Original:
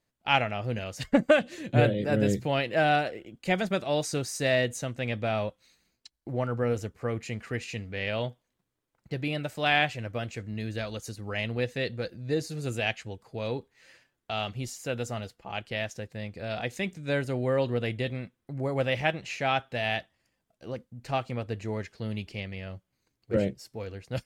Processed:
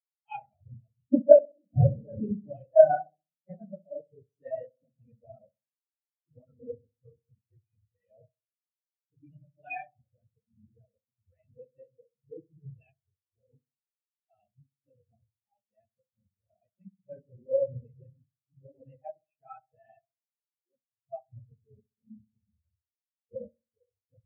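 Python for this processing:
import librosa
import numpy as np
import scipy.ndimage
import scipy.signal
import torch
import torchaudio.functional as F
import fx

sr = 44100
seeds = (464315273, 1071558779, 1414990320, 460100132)

y = fx.phase_scramble(x, sr, seeds[0], window_ms=50)
y = fx.echo_filtered(y, sr, ms=65, feedback_pct=75, hz=1400.0, wet_db=-7)
y = fx.spectral_expand(y, sr, expansion=4.0)
y = y * 10.0 ** (4.0 / 20.0)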